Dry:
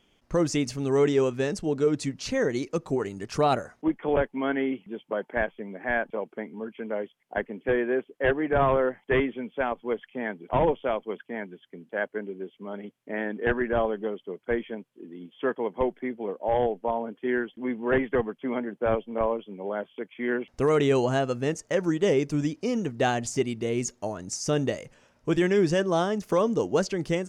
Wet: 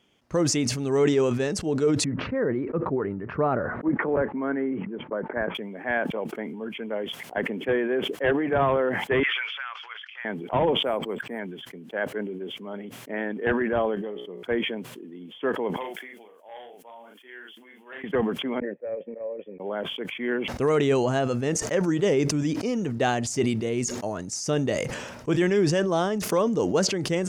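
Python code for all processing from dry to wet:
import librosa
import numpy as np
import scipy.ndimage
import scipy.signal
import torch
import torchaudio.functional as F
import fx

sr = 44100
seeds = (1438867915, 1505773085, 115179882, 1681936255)

y = fx.chain(x, sr, fx.lowpass(hz=1700.0, slope=24),
    fx.peak_eq(hz=760.0, db=-5.0, octaves=0.43), at=(2.04, 5.55))
y = fx.chain(y, sr, fx.ellip_bandpass(low_hz=1300.0, high_hz=5600.0, order=3, stop_db=70),
    fx.band_squash(depth_pct=100), at=(9.23, 10.25))
y = fx.chain(y, sr, fx.peak_eq(hz=3100.0, db=-8.0, octaves=0.48),
    fx.resample_linear(factor=4), at=(10.83, 11.39))
y = fx.chain(y, sr, fx.notch(hz=1400.0, q=8.6),
    fx.comb_fb(f0_hz=60.0, decay_s=0.31, harmonics='all', damping=0.0, mix_pct=60), at=(13.95, 14.43))
y = fx.chain(y, sr, fx.differentiator(),
    fx.doubler(ms=38.0, db=-4.5), at=(15.76, 18.04))
y = fx.chain(y, sr, fx.formant_cascade(vowel='e'),
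    fx.upward_expand(threshold_db=-41.0, expansion=2.5), at=(18.6, 19.6))
y = scipy.signal.sosfilt(scipy.signal.butter(2, 73.0, 'highpass', fs=sr, output='sos'), y)
y = fx.sustainer(y, sr, db_per_s=40.0)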